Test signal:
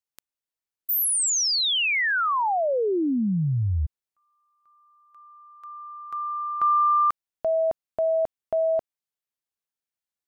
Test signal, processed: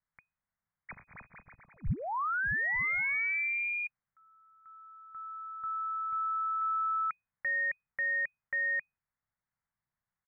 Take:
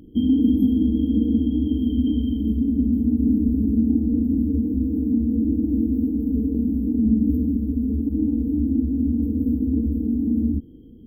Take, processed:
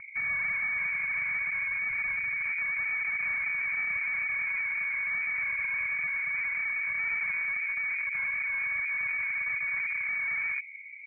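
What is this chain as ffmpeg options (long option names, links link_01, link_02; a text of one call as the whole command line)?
ffmpeg -i in.wav -filter_complex "[0:a]asplit=2[link_01][link_02];[link_02]highpass=frequency=720:poles=1,volume=33dB,asoftclip=type=tanh:threshold=-7.5dB[link_03];[link_01][link_03]amix=inputs=2:normalize=0,lowpass=frequency=1900:poles=1,volume=-6dB,lowpass=frequency=2100:width_type=q:width=0.5098,lowpass=frequency=2100:width_type=q:width=0.6013,lowpass=frequency=2100:width_type=q:width=0.9,lowpass=frequency=2100:width_type=q:width=2.563,afreqshift=-2500,firequalizer=gain_entry='entry(150,0);entry(330,-24);entry(1000,-17)':delay=0.05:min_phase=1" out.wav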